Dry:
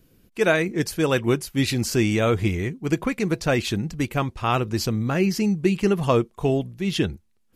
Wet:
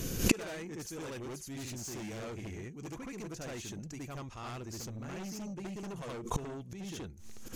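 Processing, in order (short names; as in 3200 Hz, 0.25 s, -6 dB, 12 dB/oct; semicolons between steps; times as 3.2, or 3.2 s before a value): bell 6400 Hz +13.5 dB 0.48 oct; on a send: reverse echo 72 ms -3.5 dB; on the sum: dynamic EQ 4400 Hz, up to -4 dB, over -39 dBFS, Q 1; in parallel at -12 dB: sine folder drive 15 dB, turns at -5 dBFS; on the sum: flipped gate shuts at -18 dBFS, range -35 dB; backwards sustainer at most 120 dB/s; gain +8.5 dB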